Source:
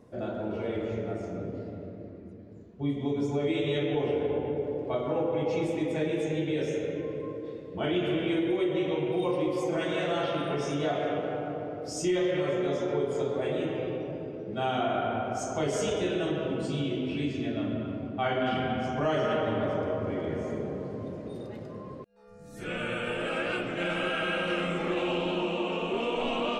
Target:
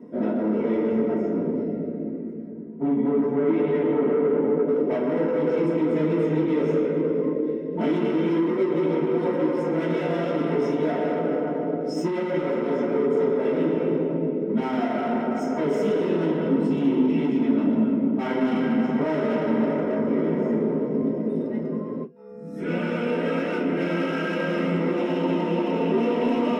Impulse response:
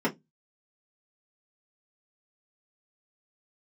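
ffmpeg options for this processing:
-filter_complex "[0:a]asoftclip=type=hard:threshold=-31.5dB,asettb=1/sr,asplit=3[a][b][c];[a]atrim=end=2.494[d];[b]atrim=start=2.49:end=4.68,asetpts=PTS-STARTPTS,afade=t=in:d=0.004:c=qsin,afade=t=out:st=2.186:d=0.004:c=qsin,lowpass=2.2k[e];[c]atrim=start=4.676[f];[d][e]acrossfade=d=0.004:c1=hsin:c2=qsin[g];[g][f]acrossfade=d=0.004:c1=qsin:c2=hsin[h];[1:a]atrim=start_sample=2205[i];[h][i]afir=irnorm=-1:irlink=0,volume=-5dB"

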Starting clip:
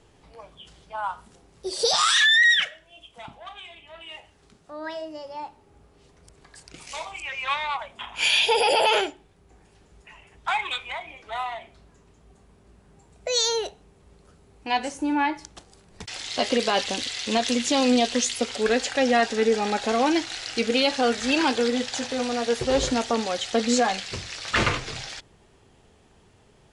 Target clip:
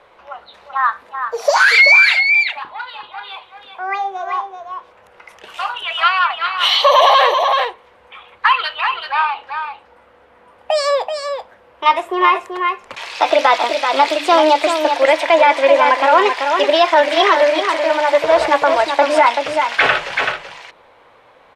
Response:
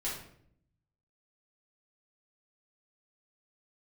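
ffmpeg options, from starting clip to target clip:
-filter_complex "[0:a]bandreject=f=60:t=h:w=6,bandreject=f=120:t=h:w=6,bandreject=f=180:t=h:w=6,bandreject=f=240:t=h:w=6,asetrate=54684,aresample=44100,acrossover=split=490 2900:gain=0.0794 1 0.0631[a][b][c];[a][b][c]amix=inputs=3:normalize=0,asplit=2[d][e];[e]aecho=0:1:383:0.447[f];[d][f]amix=inputs=2:normalize=0,alimiter=level_in=15.5dB:limit=-1dB:release=50:level=0:latency=1,volume=-1dB"

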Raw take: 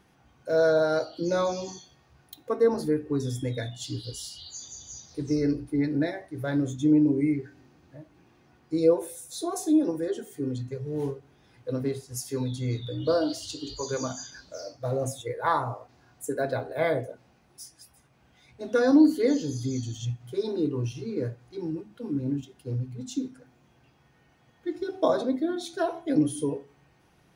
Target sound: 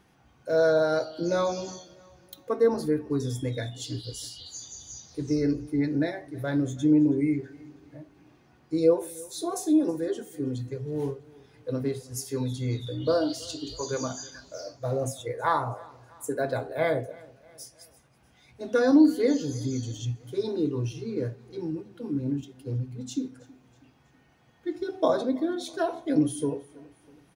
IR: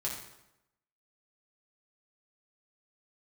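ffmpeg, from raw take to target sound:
-af "aecho=1:1:323|646|969:0.0708|0.034|0.0163"

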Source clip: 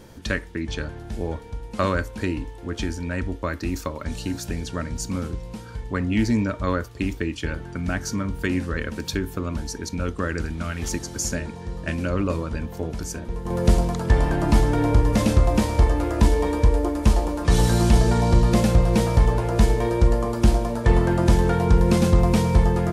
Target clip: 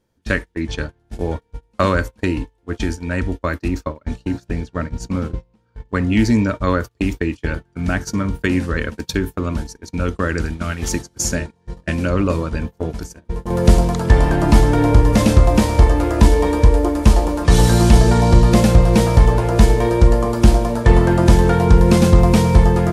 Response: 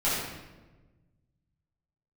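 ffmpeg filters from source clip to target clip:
-filter_complex "[0:a]agate=range=-29dB:threshold=-28dB:ratio=16:detection=peak,asettb=1/sr,asplit=3[a][b][c];[a]atrim=end=3.684[d];[b]atrim=start=3.68:end=5.89,asetpts=PTS-STARTPTS,afade=t=in:d=0.004:c=qsin,afade=t=out:st=2.206:d=0.004:c=qsin,lowpass=f=2.6k:p=1[e];[c]atrim=start=5.886[f];[d][e]acrossfade=d=0.004:c1=hsin:c2=qsin[g];[g][f]acrossfade=d=0.004:c1=qsin:c2=hsin,volume=6dB"

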